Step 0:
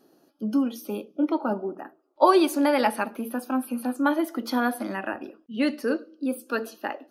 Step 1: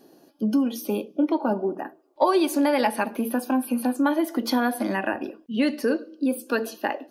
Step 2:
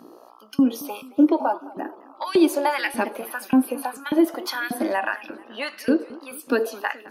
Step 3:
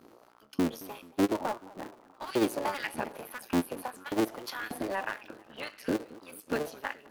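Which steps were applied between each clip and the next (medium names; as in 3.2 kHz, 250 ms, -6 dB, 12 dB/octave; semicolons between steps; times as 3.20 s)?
band-stop 1.3 kHz, Q 5.3; compression 2.5:1, threshold -27 dBFS, peak gain reduction 10 dB; trim +6.5 dB
mains buzz 60 Hz, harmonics 22, -53 dBFS -1 dB/octave; LFO high-pass saw up 1.7 Hz 200–2700 Hz; modulated delay 216 ms, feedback 51%, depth 169 cents, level -20 dB
cycle switcher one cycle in 3, muted; trim -8.5 dB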